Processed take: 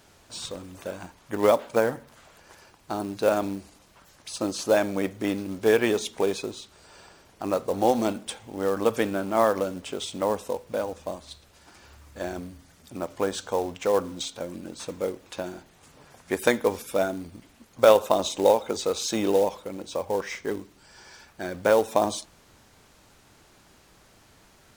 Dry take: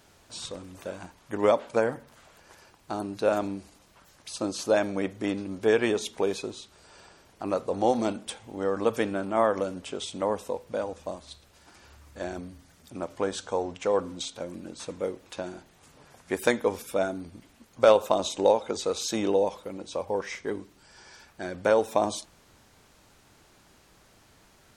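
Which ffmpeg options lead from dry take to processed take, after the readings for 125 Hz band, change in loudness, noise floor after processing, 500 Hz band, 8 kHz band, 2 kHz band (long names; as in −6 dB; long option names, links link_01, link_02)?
+2.0 dB, +2.0 dB, −57 dBFS, +2.0 dB, +3.0 dB, +2.0 dB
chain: -af "acrusher=bits=5:mode=log:mix=0:aa=0.000001,volume=2dB"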